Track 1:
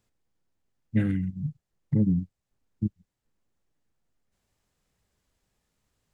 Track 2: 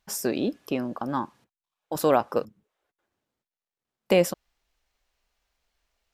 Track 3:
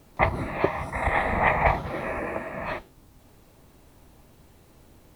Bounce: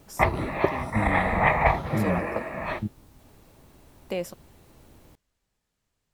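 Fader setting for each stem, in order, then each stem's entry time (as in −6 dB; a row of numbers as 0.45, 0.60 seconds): −3.5, −10.5, +0.5 decibels; 0.00, 0.00, 0.00 seconds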